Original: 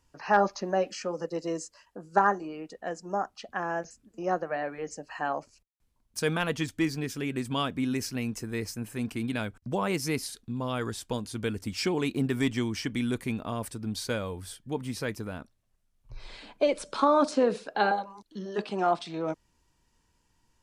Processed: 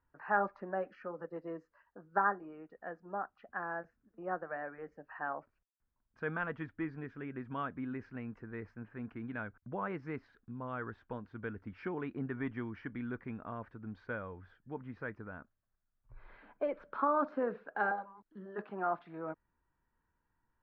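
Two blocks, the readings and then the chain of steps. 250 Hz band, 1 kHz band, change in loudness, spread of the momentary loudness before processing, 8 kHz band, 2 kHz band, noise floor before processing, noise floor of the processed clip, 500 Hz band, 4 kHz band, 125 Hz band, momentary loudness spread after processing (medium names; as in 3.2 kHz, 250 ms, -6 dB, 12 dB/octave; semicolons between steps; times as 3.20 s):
-11.0 dB, -7.5 dB, -9.0 dB, 13 LU, under -40 dB, -5.5 dB, -72 dBFS, -83 dBFS, -10.0 dB, under -25 dB, -11.0 dB, 15 LU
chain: four-pole ladder low-pass 1.8 kHz, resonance 50%; trim -1.5 dB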